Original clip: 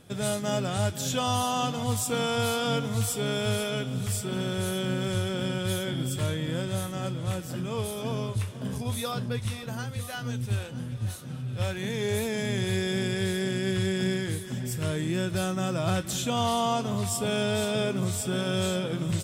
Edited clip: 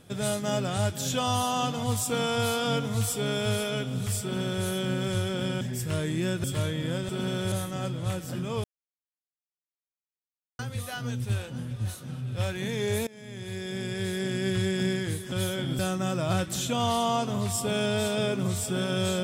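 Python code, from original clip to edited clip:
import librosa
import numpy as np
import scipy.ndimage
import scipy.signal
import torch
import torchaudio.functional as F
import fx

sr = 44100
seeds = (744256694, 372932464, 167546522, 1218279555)

y = fx.edit(x, sr, fx.duplicate(start_s=4.22, length_s=0.43, to_s=6.73),
    fx.swap(start_s=5.61, length_s=0.47, other_s=14.53, other_length_s=0.83),
    fx.silence(start_s=7.85, length_s=1.95),
    fx.fade_in_from(start_s=12.28, length_s=1.4, floor_db=-22.5), tone=tone)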